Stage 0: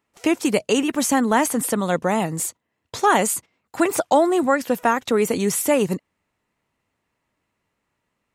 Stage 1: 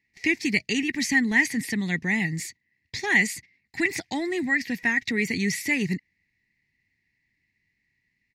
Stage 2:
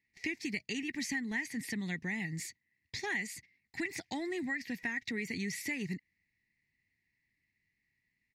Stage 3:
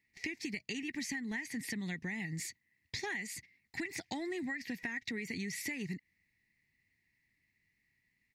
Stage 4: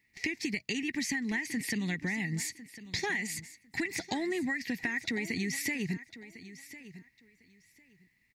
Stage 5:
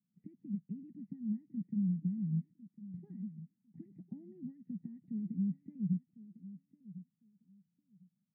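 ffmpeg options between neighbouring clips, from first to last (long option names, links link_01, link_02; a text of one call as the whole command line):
ffmpeg -i in.wav -af "firequalizer=gain_entry='entry(140,0);entry(390,-10);entry(550,-26);entry(790,-15);entry(1300,-27);entry(1900,12);entry(3100,-7);entry(4500,4);entry(8400,-14)':delay=0.05:min_phase=1" out.wav
ffmpeg -i in.wav -af "acompressor=threshold=-27dB:ratio=4,volume=-7dB" out.wav
ffmpeg -i in.wav -af "acompressor=threshold=-39dB:ratio=6,volume=3dB" out.wav
ffmpeg -i in.wav -af "aecho=1:1:1052|2104:0.168|0.0319,volume=6dB" out.wav
ffmpeg -i in.wav -af "asuperpass=centerf=180:order=4:qfactor=2.9,volume=2.5dB" out.wav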